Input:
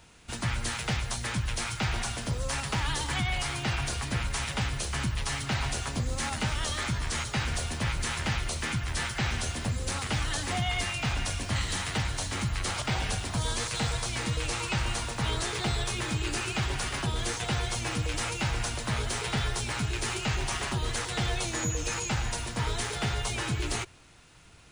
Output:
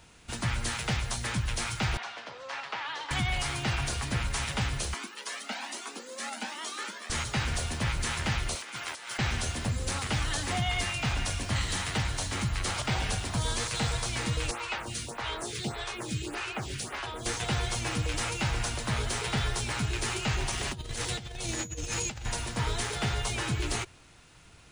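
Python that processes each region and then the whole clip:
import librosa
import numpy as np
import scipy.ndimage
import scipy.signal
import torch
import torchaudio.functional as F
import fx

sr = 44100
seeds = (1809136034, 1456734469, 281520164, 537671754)

y = fx.chain(x, sr, fx.highpass(hz=640.0, slope=12),
    fx.air_absorb(metres=220.0), at=(1.97, 3.11))
y = fx.chain(y, sr, fx.brickwall_highpass(low_hz=200.0),
    fx.comb_cascade(direction='rising', hz=1.2), at=(4.94, 7.1))
y = fx.chain(y, sr, fx.highpass(hz=460.0, slope=12),
    fx.notch(hz=1800.0, q=18.0),
    fx.over_compress(threshold_db=-38.0, ratio=-0.5), at=(8.55, 9.19))
y = fx.chain(y, sr, fx.highpass(hz=94.0, slope=6),
    fx.stagger_phaser(hz=1.7), at=(14.51, 17.26))
y = fx.chain(y, sr, fx.peak_eq(hz=1200.0, db=-6.5, octaves=1.6),
    fx.over_compress(threshold_db=-34.0, ratio=-0.5), at=(20.5, 22.26))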